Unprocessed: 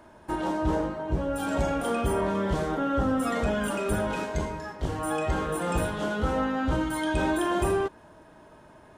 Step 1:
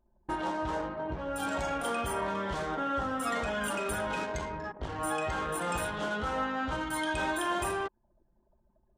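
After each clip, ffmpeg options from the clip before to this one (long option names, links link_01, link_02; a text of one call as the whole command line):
ffmpeg -i in.wav -filter_complex "[0:a]anlmdn=1,acrossover=split=740[link_01][link_02];[link_01]acompressor=threshold=-35dB:ratio=10[link_03];[link_03][link_02]amix=inputs=2:normalize=0" out.wav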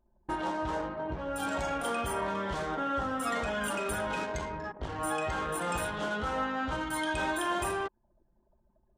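ffmpeg -i in.wav -af anull out.wav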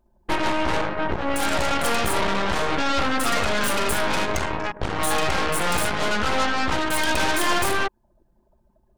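ffmpeg -i in.wav -af "aeval=exprs='0.1*(cos(1*acos(clip(val(0)/0.1,-1,1)))-cos(1*PI/2))+0.0282*(cos(8*acos(clip(val(0)/0.1,-1,1)))-cos(8*PI/2))':channel_layout=same,volume=7dB" out.wav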